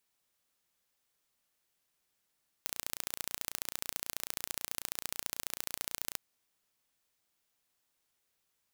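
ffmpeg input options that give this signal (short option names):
-f lavfi -i "aevalsrc='0.447*eq(mod(n,1510),0)*(0.5+0.5*eq(mod(n,3020),0))':d=3.51:s=44100"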